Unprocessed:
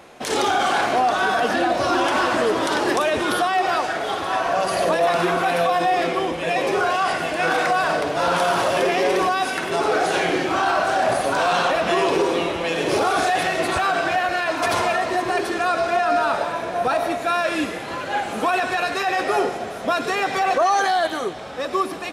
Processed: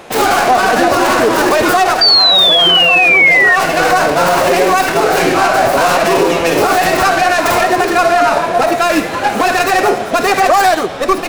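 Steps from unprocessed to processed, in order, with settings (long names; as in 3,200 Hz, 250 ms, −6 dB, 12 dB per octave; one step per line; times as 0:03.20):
stylus tracing distortion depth 0.41 ms
dynamic equaliser 3,300 Hz, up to −5 dB, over −45 dBFS, Q 6.1
phase-vocoder stretch with locked phases 0.51×
sound drawn into the spectrogram fall, 0:02.01–0:03.56, 1,800–4,700 Hz −14 dBFS
boost into a limiter +13 dB
level −1 dB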